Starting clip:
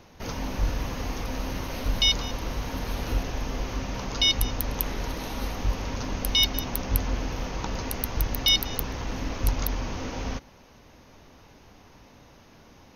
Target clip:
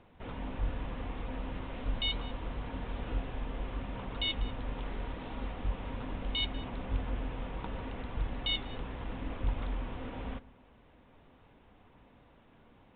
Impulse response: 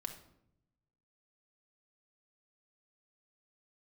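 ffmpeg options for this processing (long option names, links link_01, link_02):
-filter_complex "[0:a]flanger=delay=0.1:depth=7.9:regen=-77:speed=0.75:shape=sinusoidal,asplit=2[link_01][link_02];[1:a]atrim=start_sample=2205,lowpass=2100[link_03];[link_02][link_03]afir=irnorm=-1:irlink=0,volume=-8.5dB[link_04];[link_01][link_04]amix=inputs=2:normalize=0,aresample=8000,aresample=44100,volume=-5.5dB"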